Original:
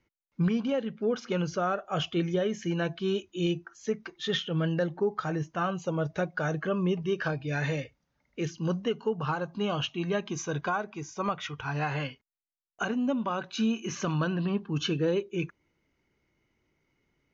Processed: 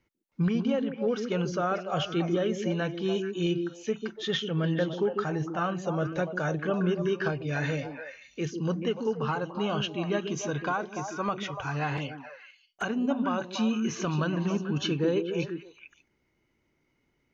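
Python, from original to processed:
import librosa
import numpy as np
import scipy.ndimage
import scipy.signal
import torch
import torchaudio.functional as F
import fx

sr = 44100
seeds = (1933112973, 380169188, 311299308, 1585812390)

y = fx.echo_stepped(x, sr, ms=145, hz=280.0, octaves=1.4, feedback_pct=70, wet_db=-2)
y = fx.env_flanger(y, sr, rest_ms=6.2, full_db=-29.0, at=(11.97, 12.82))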